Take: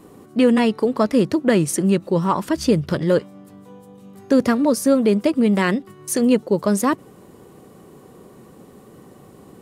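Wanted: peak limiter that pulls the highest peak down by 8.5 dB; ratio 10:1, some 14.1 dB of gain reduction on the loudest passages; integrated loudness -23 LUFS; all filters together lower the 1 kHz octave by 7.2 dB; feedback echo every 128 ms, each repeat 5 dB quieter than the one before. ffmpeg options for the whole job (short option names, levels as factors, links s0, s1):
-af "equalizer=f=1000:t=o:g=-9,acompressor=threshold=0.0447:ratio=10,alimiter=limit=0.0631:level=0:latency=1,aecho=1:1:128|256|384|512|640|768|896:0.562|0.315|0.176|0.0988|0.0553|0.031|0.0173,volume=2.99"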